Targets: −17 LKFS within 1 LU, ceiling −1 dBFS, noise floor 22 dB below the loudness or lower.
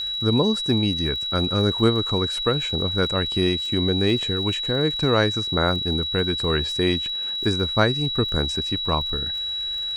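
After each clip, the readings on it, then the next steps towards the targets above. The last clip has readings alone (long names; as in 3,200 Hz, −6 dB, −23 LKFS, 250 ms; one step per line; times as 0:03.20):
crackle rate 46 per second; interfering tone 3,900 Hz; level of the tone −25 dBFS; integrated loudness −21.5 LKFS; sample peak −4.5 dBFS; target loudness −17.0 LKFS
→ click removal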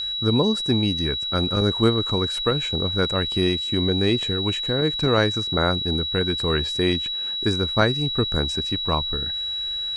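crackle rate 0.10 per second; interfering tone 3,900 Hz; level of the tone −25 dBFS
→ notch filter 3,900 Hz, Q 30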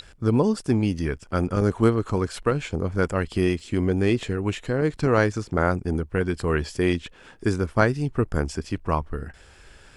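interfering tone none found; integrated loudness −24.5 LKFS; sample peak −4.5 dBFS; target loudness −17.0 LKFS
→ level +7.5 dB
brickwall limiter −1 dBFS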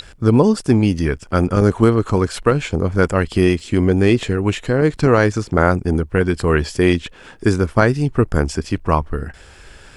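integrated loudness −17.0 LKFS; sample peak −1.0 dBFS; background noise floor −44 dBFS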